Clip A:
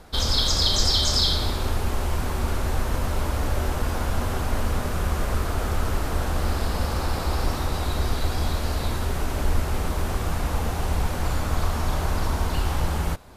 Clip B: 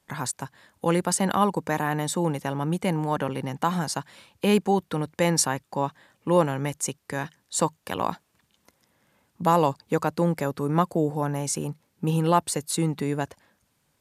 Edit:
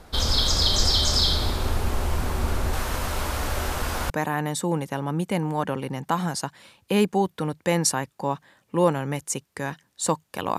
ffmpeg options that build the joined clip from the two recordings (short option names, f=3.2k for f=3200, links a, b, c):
-filter_complex "[0:a]asettb=1/sr,asplit=3[a][b][c];[a]atrim=end=2.734[d];[b]atrim=start=2.73:end=4.1,asetpts=PTS-STARTPTS,afade=t=in:d=0.004:c=qsin,afade=t=out:st=1.366:d=0.004:c=qsin,tiltshelf=f=690:g=-4.5[e];[c]atrim=start=4.096[f];[d][e]acrossfade=d=0.004:c1=hsin:c2=qsin[g];[g][f]acrossfade=d=0.004:c1=qsin:c2=hsin,apad=whole_dur=10.58,atrim=end=10.58,atrim=end=4.102[h];[1:a]atrim=start=1.628:end=8.11[i];[h][i]acrossfade=d=0.004:c1=hsin:c2=hsin"